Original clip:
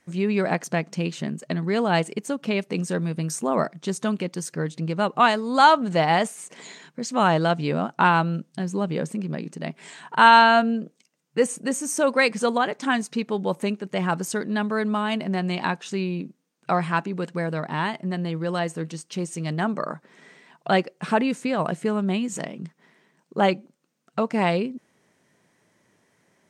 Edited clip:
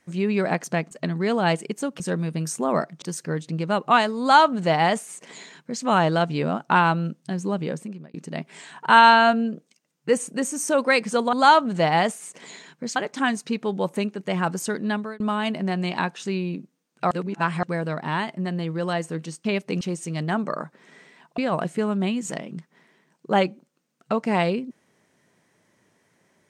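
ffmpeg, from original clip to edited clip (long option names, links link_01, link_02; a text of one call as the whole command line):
ffmpeg -i in.wav -filter_complex "[0:a]asplit=13[link_01][link_02][link_03][link_04][link_05][link_06][link_07][link_08][link_09][link_10][link_11][link_12][link_13];[link_01]atrim=end=0.912[link_14];[link_02]atrim=start=1.378:end=2.472[link_15];[link_03]atrim=start=2.828:end=3.852[link_16];[link_04]atrim=start=4.308:end=9.43,asetpts=PTS-STARTPTS,afade=type=out:start_time=4.392:duration=0.73:curve=qsin[link_17];[link_05]atrim=start=9.43:end=12.622,asetpts=PTS-STARTPTS,afade=type=in:duration=0.004:curve=hsin[link_18];[link_06]atrim=start=5.488:end=7.122[link_19];[link_07]atrim=start=12.618:end=14.86,asetpts=PTS-STARTPTS,afade=type=out:start_time=1.962:duration=0.28[link_20];[link_08]atrim=start=14.86:end=16.772,asetpts=PTS-STARTPTS,afade=type=in:duration=0.004:curve=hsin[link_21];[link_09]atrim=start=16.768:end=17.292,asetpts=PTS-STARTPTS,areverse[link_22];[link_10]atrim=start=17.288:end=19.112[link_23];[link_11]atrim=start=2.468:end=2.832[link_24];[link_12]atrim=start=19.108:end=20.682[link_25];[link_13]atrim=start=21.448[link_26];[link_14][link_15]acrossfade=duration=0.004:curve1=hsin:curve2=hsin[link_27];[link_27][link_16]acrossfade=duration=0.004:curve1=hsin:curve2=hsin[link_28];[link_17][link_18]concat=n=2:v=0:a=1[link_29];[link_28][link_29]acrossfade=duration=0.004:curve1=hsin:curve2=hsin[link_30];[link_30][link_19]acrossfade=duration=0.004:curve1=hsin:curve2=hsin[link_31];[link_20][link_21]concat=n=2:v=0:a=1[link_32];[link_31][link_32]acrossfade=duration=0.004:curve1=hsin:curve2=hsin[link_33];[link_33][link_22]acrossfade=duration=0.004:curve1=hsin:curve2=hsin[link_34];[link_34][link_23]acrossfade=duration=0.004:curve1=hsin:curve2=hsin[link_35];[link_35][link_24]acrossfade=duration=0.004:curve1=hsin:curve2=hsin[link_36];[link_36][link_25]acrossfade=duration=0.004:curve1=hsin:curve2=hsin[link_37];[link_37][link_26]acrossfade=duration=0.004:curve1=hsin:curve2=hsin" out.wav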